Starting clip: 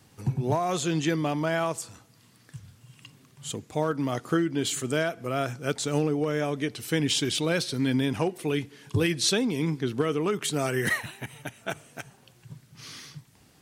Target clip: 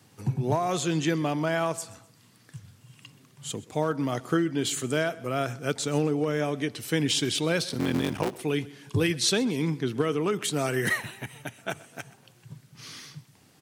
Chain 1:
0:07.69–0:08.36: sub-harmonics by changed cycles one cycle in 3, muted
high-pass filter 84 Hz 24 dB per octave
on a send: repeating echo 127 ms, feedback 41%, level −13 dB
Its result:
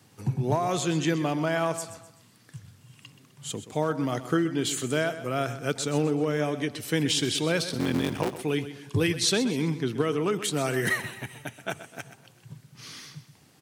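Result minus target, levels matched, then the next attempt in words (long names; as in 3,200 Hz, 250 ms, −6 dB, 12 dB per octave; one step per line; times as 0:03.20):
echo-to-direct +8 dB
0:07.69–0:08.36: sub-harmonics by changed cycles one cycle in 3, muted
high-pass filter 84 Hz 24 dB per octave
on a send: repeating echo 127 ms, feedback 41%, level −21 dB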